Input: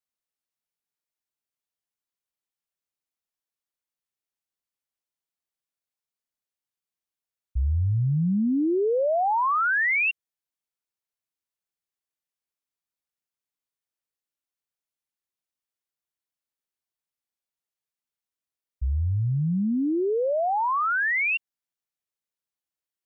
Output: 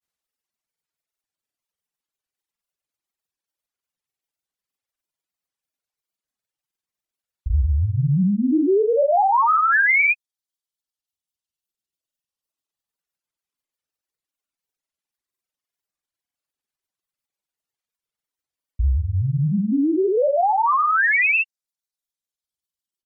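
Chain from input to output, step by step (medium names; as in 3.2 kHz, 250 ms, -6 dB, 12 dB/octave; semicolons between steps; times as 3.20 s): vibrato 0.5 Hz 6.1 cents; granulator, grains 20 per s, pitch spread up and down by 0 st; reverb removal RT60 1.9 s; trim +8 dB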